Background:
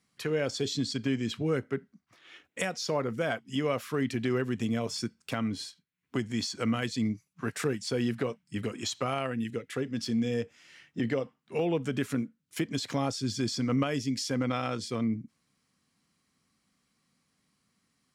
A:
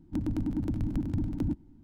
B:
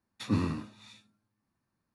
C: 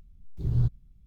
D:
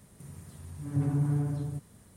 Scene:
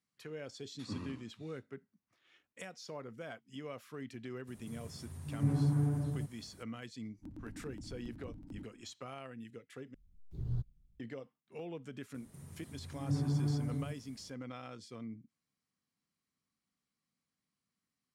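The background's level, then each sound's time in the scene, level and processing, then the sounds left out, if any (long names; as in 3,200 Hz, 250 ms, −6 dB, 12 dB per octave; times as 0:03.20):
background −15.5 dB
0:00.59: mix in B −14 dB
0:04.47: mix in D −2.5 dB
0:07.10: mix in A −18 dB
0:09.94: overwrite with C −12 dB
0:12.14: mix in D −5 dB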